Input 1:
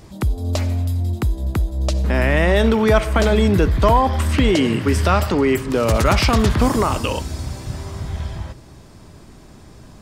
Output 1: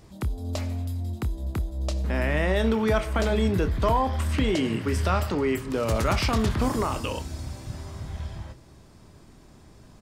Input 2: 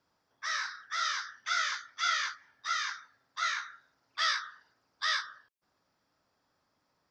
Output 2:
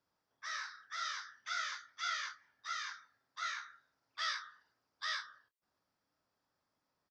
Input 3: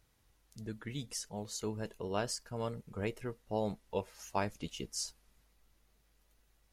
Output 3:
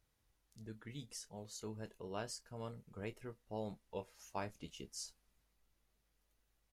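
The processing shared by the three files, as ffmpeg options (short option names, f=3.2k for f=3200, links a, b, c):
-filter_complex "[0:a]asplit=2[a][b];[b]adelay=27,volume=-12dB[c];[a][c]amix=inputs=2:normalize=0,volume=-8.5dB"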